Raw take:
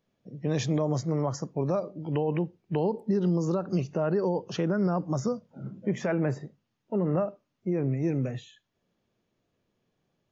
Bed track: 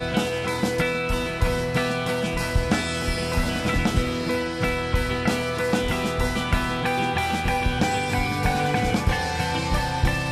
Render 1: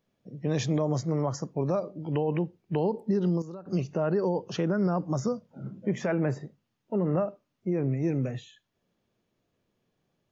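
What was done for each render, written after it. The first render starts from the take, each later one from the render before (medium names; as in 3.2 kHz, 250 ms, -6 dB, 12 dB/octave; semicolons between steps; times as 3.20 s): 3.05–4.03 s: dip -13.5 dB, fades 0.37 s logarithmic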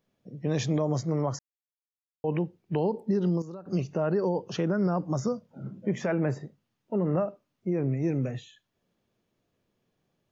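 1.39–2.24 s: mute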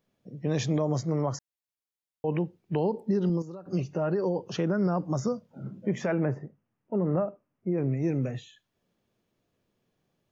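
3.29–4.46 s: comb of notches 220 Hz; 6.25–7.78 s: boxcar filter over 11 samples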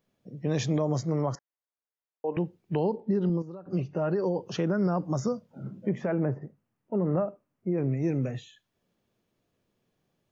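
1.35–2.37 s: Butterworth band-pass 780 Hz, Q 0.52; 2.96–3.97 s: distance through air 190 m; 5.89–6.42 s: low-pass 1.2 kHz 6 dB/octave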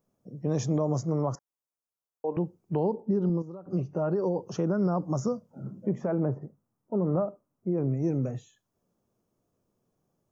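high-order bell 2.7 kHz -11.5 dB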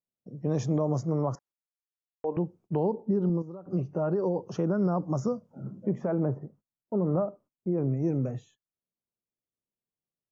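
gate -54 dBFS, range -24 dB; treble shelf 5.8 kHz -9.5 dB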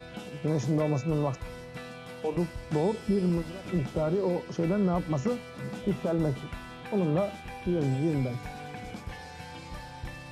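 add bed track -18 dB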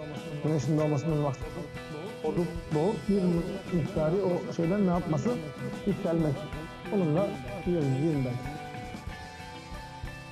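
chunks repeated in reverse 238 ms, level -13 dB; reverse echo 815 ms -13 dB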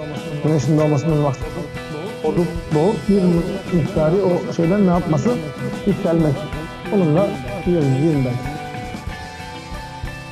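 trim +11 dB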